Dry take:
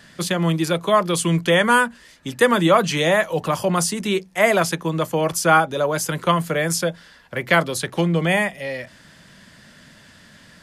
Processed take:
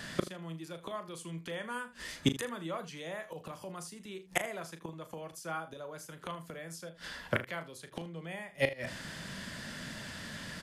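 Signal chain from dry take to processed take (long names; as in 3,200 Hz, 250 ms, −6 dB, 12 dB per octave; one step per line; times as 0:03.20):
gate with flip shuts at −19 dBFS, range −28 dB
ambience of single reflections 37 ms −10.5 dB, 79 ms −16.5 dB
level +4 dB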